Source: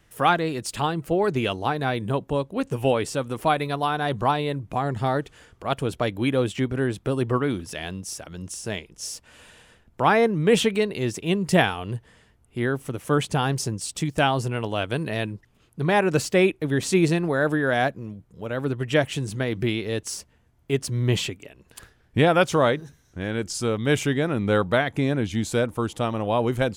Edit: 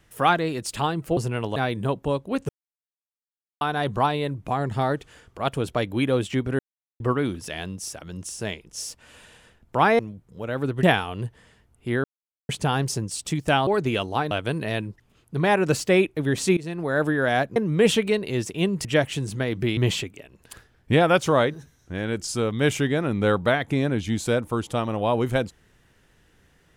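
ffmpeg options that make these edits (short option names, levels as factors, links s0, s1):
-filter_complex "[0:a]asplit=17[s0][s1][s2][s3][s4][s5][s6][s7][s8][s9][s10][s11][s12][s13][s14][s15][s16];[s0]atrim=end=1.172[s17];[s1]atrim=start=14.368:end=14.762[s18];[s2]atrim=start=1.808:end=2.74,asetpts=PTS-STARTPTS,afade=t=out:st=0.928:d=0.004:c=hsin[s19];[s3]atrim=start=2.74:end=3.86,asetpts=PTS-STARTPTS,volume=0[s20];[s4]atrim=start=3.86:end=6.84,asetpts=PTS-STARTPTS,afade=t=in:d=0.004:c=hsin,afade=t=out:st=2.976:d=0.004:c=hsin[s21];[s5]atrim=start=6.84:end=7.25,asetpts=PTS-STARTPTS,volume=0[s22];[s6]atrim=start=7.25:end=10.242,asetpts=PTS-STARTPTS,afade=t=in:d=0.004:c=hsin[s23];[s7]atrim=start=18.008:end=18.852[s24];[s8]atrim=start=11.528:end=12.74,asetpts=PTS-STARTPTS,afade=t=out:st=1.208:d=0.004:c=hsin[s25];[s9]atrim=start=12.74:end=13.19,asetpts=PTS-STARTPTS,volume=0[s26];[s10]atrim=start=13.19:end=14.372,asetpts=PTS-STARTPTS,afade=t=in:d=0.004:c=hsin[s27];[s11]atrim=start=1.168:end=1.812[s28];[s12]atrim=start=14.758:end=17.02,asetpts=PTS-STARTPTS,afade=t=out:st=2.258:d=0.004:c=hsin:silence=0.0707946[s29];[s13]atrim=start=17.02:end=18.012,asetpts=PTS-STARTPTS,afade=t=in:d=0.43:silence=0.0707946[s30];[s14]atrim=start=10.238:end=11.532[s31];[s15]atrim=start=18.848:end=19.772[s32];[s16]atrim=start=21.028[s33];[s17][s18]acrossfade=d=0.004:c1=hsin:c2=hsin[s34];[s19][s20][s21][s22][s23]concat=n=5:v=0:a=1[s35];[s34][s35]acrossfade=d=0.004:c1=hsin:c2=hsin[s36];[s36][s24]acrossfade=d=0.004:c1=hsin:c2=hsin[s37];[s25][s26][s27]concat=n=3:v=0:a=1[s38];[s37][s38]acrossfade=d=0.004:c1=hsin:c2=hsin[s39];[s39][s28]acrossfade=d=0.004:c1=hsin:c2=hsin[s40];[s29][s30]concat=n=2:v=0:a=1[s41];[s40][s41]acrossfade=d=0.004:c1=hsin:c2=hsin[s42];[s42][s31]acrossfade=d=0.004:c1=hsin:c2=hsin[s43];[s43][s32]acrossfade=d=0.004:c1=hsin:c2=hsin[s44];[s44][s33]acrossfade=d=0.004:c1=hsin:c2=hsin"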